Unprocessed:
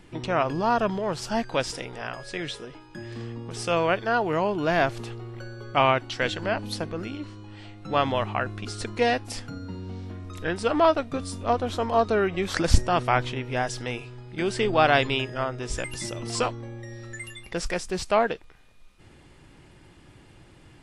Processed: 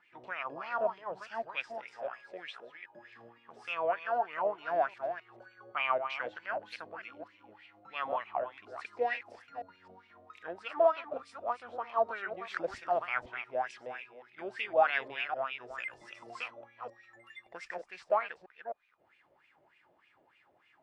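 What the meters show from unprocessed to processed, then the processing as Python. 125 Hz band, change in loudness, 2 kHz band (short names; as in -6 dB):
under -30 dB, -9.0 dB, -8.0 dB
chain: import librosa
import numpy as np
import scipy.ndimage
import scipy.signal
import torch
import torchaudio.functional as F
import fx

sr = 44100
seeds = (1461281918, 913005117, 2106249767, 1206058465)

y = fx.reverse_delay(x, sr, ms=260, wet_db=-8)
y = fx.wah_lfo(y, sr, hz=3.3, low_hz=580.0, high_hz=2500.0, q=5.6)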